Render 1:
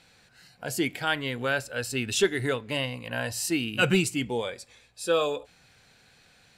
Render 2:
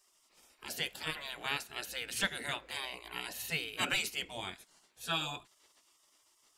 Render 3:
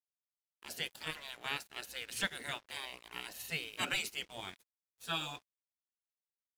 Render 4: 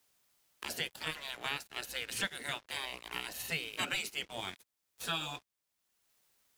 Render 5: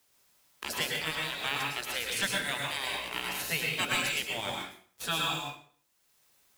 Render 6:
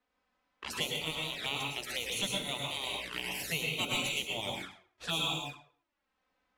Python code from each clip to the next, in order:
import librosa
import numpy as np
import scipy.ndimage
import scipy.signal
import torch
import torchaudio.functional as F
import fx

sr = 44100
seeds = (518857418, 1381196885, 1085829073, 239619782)

y1 = fx.spec_gate(x, sr, threshold_db=-15, keep='weak')
y2 = np.sign(y1) * np.maximum(np.abs(y1) - 10.0 ** (-52.0 / 20.0), 0.0)
y2 = y2 * 10.0 ** (-2.0 / 20.0)
y3 = fx.band_squash(y2, sr, depth_pct=70)
y3 = y3 * 10.0 ** (2.0 / 20.0)
y4 = fx.mod_noise(y3, sr, seeds[0], snr_db=21)
y4 = fx.rev_plate(y4, sr, seeds[1], rt60_s=0.51, hf_ratio=0.85, predelay_ms=95, drr_db=-1.0)
y4 = y4 * 10.0 ** (3.5 / 20.0)
y5 = fx.env_lowpass(y4, sr, base_hz=1900.0, full_db=-31.5)
y5 = fx.env_flanger(y5, sr, rest_ms=4.0, full_db=-30.5)